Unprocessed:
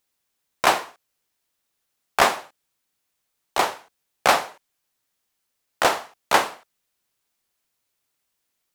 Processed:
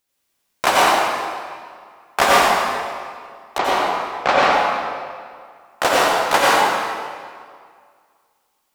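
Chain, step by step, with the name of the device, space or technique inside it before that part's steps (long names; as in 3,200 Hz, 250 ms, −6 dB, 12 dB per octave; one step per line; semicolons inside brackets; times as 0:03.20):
0:03.58–0:04.43: high-frequency loss of the air 160 metres
stairwell (convolution reverb RT60 2.0 s, pre-delay 80 ms, DRR −6.5 dB)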